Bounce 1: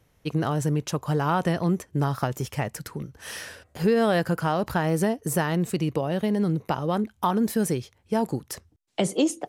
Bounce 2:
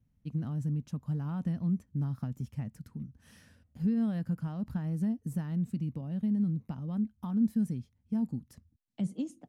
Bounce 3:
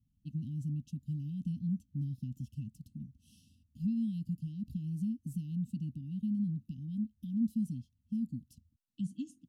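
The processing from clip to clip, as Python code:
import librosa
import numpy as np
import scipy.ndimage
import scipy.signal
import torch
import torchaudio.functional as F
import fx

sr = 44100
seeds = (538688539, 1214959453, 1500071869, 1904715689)

y1 = fx.curve_eq(x, sr, hz=(160.0, 240.0, 360.0), db=(0, 4, -18))
y1 = F.gain(torch.from_numpy(y1), -6.0).numpy()
y2 = fx.brickwall_bandstop(y1, sr, low_hz=310.0, high_hz=2600.0)
y2 = F.gain(torch.from_numpy(y2), -4.0).numpy()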